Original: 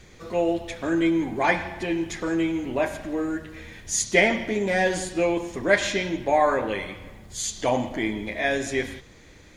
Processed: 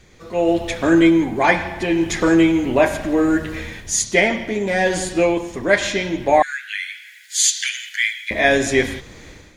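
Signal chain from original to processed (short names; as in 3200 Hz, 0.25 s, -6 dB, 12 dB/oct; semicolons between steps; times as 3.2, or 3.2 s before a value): 6.42–8.31 steep high-pass 1500 Hz 96 dB/oct; AGC gain up to 17 dB; gain -1 dB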